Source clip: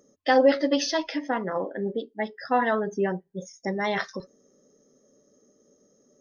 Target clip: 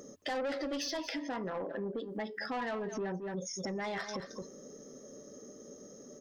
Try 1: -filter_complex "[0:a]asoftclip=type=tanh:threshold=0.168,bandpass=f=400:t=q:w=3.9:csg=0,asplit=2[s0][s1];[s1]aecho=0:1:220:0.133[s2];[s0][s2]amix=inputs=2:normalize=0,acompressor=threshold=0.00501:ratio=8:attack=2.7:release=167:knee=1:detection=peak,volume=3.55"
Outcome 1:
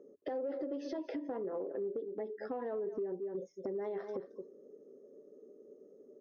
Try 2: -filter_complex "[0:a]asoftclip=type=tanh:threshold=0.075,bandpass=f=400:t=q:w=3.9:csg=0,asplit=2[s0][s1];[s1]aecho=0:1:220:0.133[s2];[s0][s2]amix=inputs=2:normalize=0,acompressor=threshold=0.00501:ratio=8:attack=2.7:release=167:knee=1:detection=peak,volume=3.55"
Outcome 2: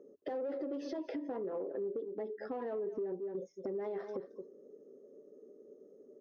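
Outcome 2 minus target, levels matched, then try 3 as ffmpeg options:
500 Hz band +3.0 dB
-filter_complex "[0:a]asoftclip=type=tanh:threshold=0.075,asplit=2[s0][s1];[s1]aecho=0:1:220:0.133[s2];[s0][s2]amix=inputs=2:normalize=0,acompressor=threshold=0.00501:ratio=8:attack=2.7:release=167:knee=1:detection=peak,volume=3.55"

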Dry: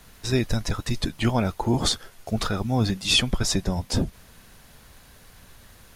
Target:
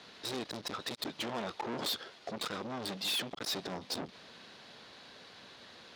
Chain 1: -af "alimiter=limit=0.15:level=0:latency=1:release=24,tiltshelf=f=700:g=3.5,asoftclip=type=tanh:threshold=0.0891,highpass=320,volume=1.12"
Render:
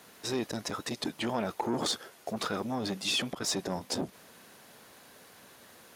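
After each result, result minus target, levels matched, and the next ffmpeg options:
saturation: distortion -8 dB; 4 kHz band -2.5 dB
-af "alimiter=limit=0.15:level=0:latency=1:release=24,tiltshelf=f=700:g=3.5,asoftclip=type=tanh:threshold=0.0251,highpass=320,volume=1.12"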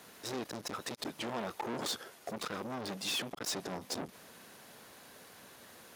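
4 kHz band -2.0 dB
-af "alimiter=limit=0.15:level=0:latency=1:release=24,lowpass=f=4100:t=q:w=2.4,tiltshelf=f=700:g=3.5,asoftclip=type=tanh:threshold=0.0251,highpass=320,volume=1.12"

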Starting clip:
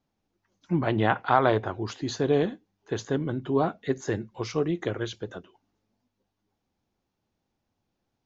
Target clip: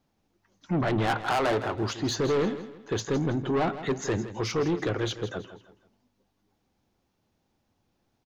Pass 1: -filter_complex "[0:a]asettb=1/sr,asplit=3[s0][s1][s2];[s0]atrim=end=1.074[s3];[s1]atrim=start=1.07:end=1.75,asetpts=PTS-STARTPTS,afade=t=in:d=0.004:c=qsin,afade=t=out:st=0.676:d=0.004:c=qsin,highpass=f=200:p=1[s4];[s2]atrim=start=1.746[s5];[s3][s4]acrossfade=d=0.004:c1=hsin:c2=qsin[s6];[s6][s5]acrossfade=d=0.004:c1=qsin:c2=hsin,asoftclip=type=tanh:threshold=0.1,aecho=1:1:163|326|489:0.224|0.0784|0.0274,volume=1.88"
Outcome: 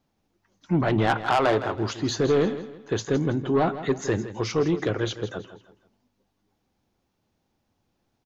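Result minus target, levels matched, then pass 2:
saturation: distortion -5 dB
-filter_complex "[0:a]asettb=1/sr,asplit=3[s0][s1][s2];[s0]atrim=end=1.074[s3];[s1]atrim=start=1.07:end=1.75,asetpts=PTS-STARTPTS,afade=t=in:d=0.004:c=qsin,afade=t=out:st=0.676:d=0.004:c=qsin,highpass=f=200:p=1[s4];[s2]atrim=start=1.746[s5];[s3][s4]acrossfade=d=0.004:c1=hsin:c2=qsin[s6];[s6][s5]acrossfade=d=0.004:c1=qsin:c2=hsin,asoftclip=type=tanh:threshold=0.0447,aecho=1:1:163|326|489:0.224|0.0784|0.0274,volume=1.88"

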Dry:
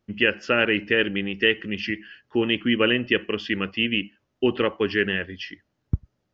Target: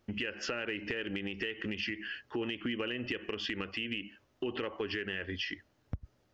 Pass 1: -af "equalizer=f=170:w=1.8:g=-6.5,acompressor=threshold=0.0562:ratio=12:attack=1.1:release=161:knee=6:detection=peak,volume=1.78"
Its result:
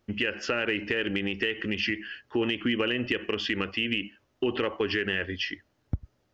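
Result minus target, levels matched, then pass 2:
compression: peak gain reduction -8.5 dB
-af "equalizer=f=170:w=1.8:g=-6.5,acompressor=threshold=0.0188:ratio=12:attack=1.1:release=161:knee=6:detection=peak,volume=1.78"

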